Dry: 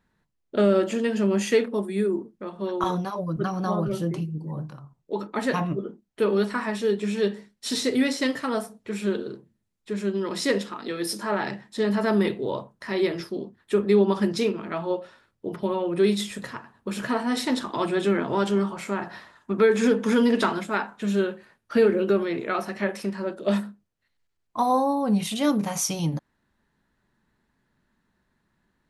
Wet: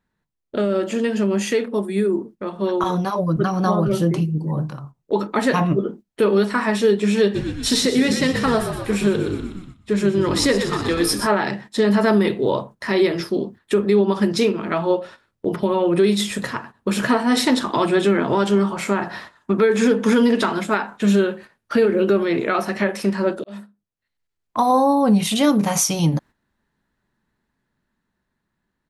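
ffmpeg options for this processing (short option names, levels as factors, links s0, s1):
-filter_complex "[0:a]asplit=3[s0][s1][s2];[s0]afade=t=out:st=7.34:d=0.02[s3];[s1]asplit=8[s4][s5][s6][s7][s8][s9][s10][s11];[s5]adelay=122,afreqshift=-50,volume=0.355[s12];[s6]adelay=244,afreqshift=-100,volume=0.209[s13];[s7]adelay=366,afreqshift=-150,volume=0.123[s14];[s8]adelay=488,afreqshift=-200,volume=0.0733[s15];[s9]adelay=610,afreqshift=-250,volume=0.0432[s16];[s10]adelay=732,afreqshift=-300,volume=0.0254[s17];[s11]adelay=854,afreqshift=-350,volume=0.015[s18];[s4][s12][s13][s14][s15][s16][s17][s18]amix=inputs=8:normalize=0,afade=t=in:st=7.34:d=0.02,afade=t=out:st=11.26:d=0.02[s19];[s2]afade=t=in:st=11.26:d=0.02[s20];[s3][s19][s20]amix=inputs=3:normalize=0,asplit=2[s21][s22];[s21]atrim=end=23.44,asetpts=PTS-STARTPTS,afade=t=out:st=23.436:d=0.004:c=hsin[s23];[s22]atrim=start=23.44,asetpts=PTS-STARTPTS,afade=t=in:d=1.16[s24];[s23][s24]concat=n=2:v=0:a=1,alimiter=limit=0.133:level=0:latency=1:release=275,dynaudnorm=f=420:g=13:m=1.58,agate=range=0.316:threshold=0.00708:ratio=16:detection=peak,volume=1.88"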